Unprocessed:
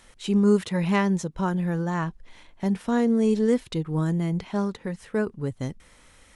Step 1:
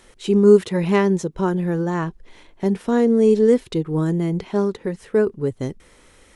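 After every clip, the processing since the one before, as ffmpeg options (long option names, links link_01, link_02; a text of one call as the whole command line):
ffmpeg -i in.wav -af "equalizer=frequency=390:width=2:gain=9.5,volume=2dB" out.wav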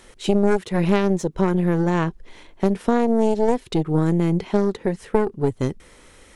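ffmpeg -i in.wav -af "aeval=exprs='0.75*(cos(1*acos(clip(val(0)/0.75,-1,1)))-cos(1*PI/2))+0.299*(cos(4*acos(clip(val(0)/0.75,-1,1)))-cos(4*PI/2))+0.0531*(cos(6*acos(clip(val(0)/0.75,-1,1)))-cos(6*PI/2))':channel_layout=same,acompressor=threshold=-16dB:ratio=6,volume=2.5dB" out.wav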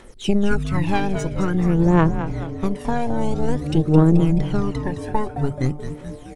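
ffmpeg -i in.wav -filter_complex "[0:a]aphaser=in_gain=1:out_gain=1:delay=1.3:decay=0.7:speed=0.5:type=triangular,asplit=2[link_01][link_02];[link_02]asplit=7[link_03][link_04][link_05][link_06][link_07][link_08][link_09];[link_03]adelay=215,afreqshift=-150,volume=-8.5dB[link_10];[link_04]adelay=430,afreqshift=-300,volume=-13.2dB[link_11];[link_05]adelay=645,afreqshift=-450,volume=-18dB[link_12];[link_06]adelay=860,afreqshift=-600,volume=-22.7dB[link_13];[link_07]adelay=1075,afreqshift=-750,volume=-27.4dB[link_14];[link_08]adelay=1290,afreqshift=-900,volume=-32.2dB[link_15];[link_09]adelay=1505,afreqshift=-1050,volume=-36.9dB[link_16];[link_10][link_11][link_12][link_13][link_14][link_15][link_16]amix=inputs=7:normalize=0[link_17];[link_01][link_17]amix=inputs=2:normalize=0,volume=-4dB" out.wav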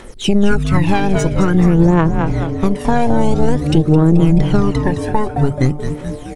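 ffmpeg -i in.wav -af "alimiter=limit=-10.5dB:level=0:latency=1:release=204,volume=9dB" out.wav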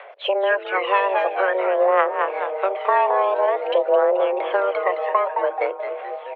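ffmpeg -i in.wav -af "highpass=frequency=320:width_type=q:width=0.5412,highpass=frequency=320:width_type=q:width=1.307,lowpass=frequency=2800:width_type=q:width=0.5176,lowpass=frequency=2800:width_type=q:width=0.7071,lowpass=frequency=2800:width_type=q:width=1.932,afreqshift=190" out.wav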